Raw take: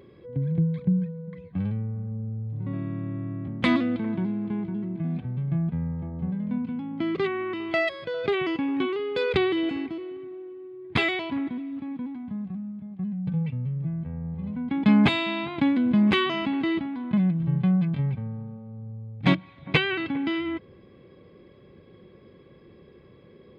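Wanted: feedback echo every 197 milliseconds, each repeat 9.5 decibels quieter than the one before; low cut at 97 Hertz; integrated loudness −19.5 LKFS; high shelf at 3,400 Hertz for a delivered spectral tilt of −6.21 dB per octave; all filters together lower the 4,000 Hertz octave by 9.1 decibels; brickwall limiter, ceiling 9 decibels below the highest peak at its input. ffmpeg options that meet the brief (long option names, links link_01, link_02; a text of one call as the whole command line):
ffmpeg -i in.wav -af "highpass=97,highshelf=frequency=3400:gain=-8.5,equalizer=frequency=4000:width_type=o:gain=-7,alimiter=limit=-17.5dB:level=0:latency=1,aecho=1:1:197|394|591|788:0.335|0.111|0.0365|0.012,volume=9dB" out.wav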